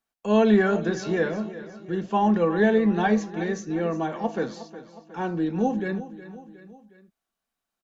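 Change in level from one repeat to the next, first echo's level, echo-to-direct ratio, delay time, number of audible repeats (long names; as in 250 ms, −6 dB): −5.5 dB, −15.0 dB, −13.5 dB, 363 ms, 3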